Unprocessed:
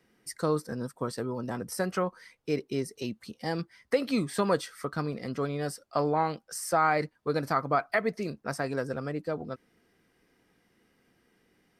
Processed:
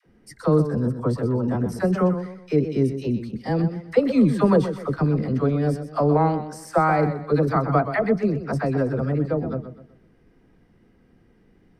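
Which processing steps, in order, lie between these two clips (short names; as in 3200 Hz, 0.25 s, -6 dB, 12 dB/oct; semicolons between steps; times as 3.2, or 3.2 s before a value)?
tilt -3.5 dB/oct; dispersion lows, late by 55 ms, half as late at 610 Hz; warbling echo 0.125 s, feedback 35%, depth 76 cents, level -10.5 dB; gain +4 dB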